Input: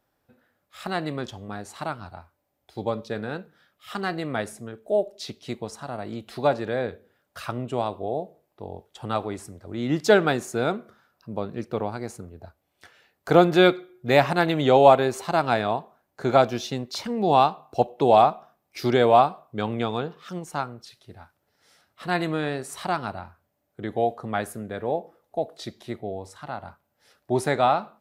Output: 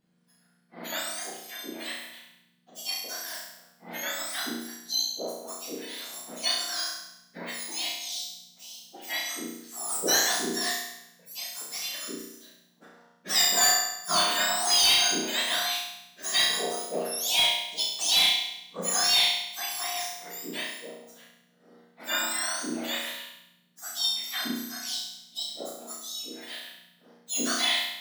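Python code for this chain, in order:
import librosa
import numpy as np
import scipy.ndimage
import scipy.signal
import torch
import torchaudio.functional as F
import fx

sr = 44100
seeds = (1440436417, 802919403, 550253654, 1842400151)

y = fx.octave_mirror(x, sr, pivot_hz=1600.0)
y = fx.room_flutter(y, sr, wall_m=5.8, rt60_s=0.84)
y = np.clip(10.0 ** (14.5 / 20.0) * y, -1.0, 1.0) / 10.0 ** (14.5 / 20.0)
y = y * 10.0 ** (-2.5 / 20.0)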